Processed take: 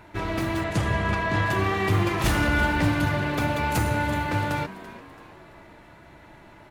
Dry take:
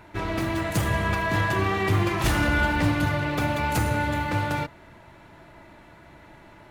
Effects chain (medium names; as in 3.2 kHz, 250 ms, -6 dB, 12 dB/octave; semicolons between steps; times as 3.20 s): 0.64–1.46 s: distance through air 57 m; on a send: frequency-shifting echo 335 ms, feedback 44%, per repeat +88 Hz, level -16.5 dB